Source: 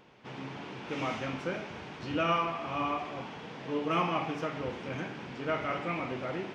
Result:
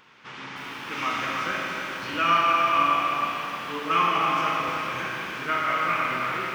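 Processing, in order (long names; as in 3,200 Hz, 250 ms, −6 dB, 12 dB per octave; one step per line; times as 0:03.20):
drawn EQ curve 700 Hz 0 dB, 1,200 Hz +14 dB, 2,700 Hz +11 dB
four-comb reverb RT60 3.1 s, combs from 28 ms, DRR −0.5 dB
feedback echo at a low word length 310 ms, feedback 35%, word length 7 bits, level −6 dB
level −4.5 dB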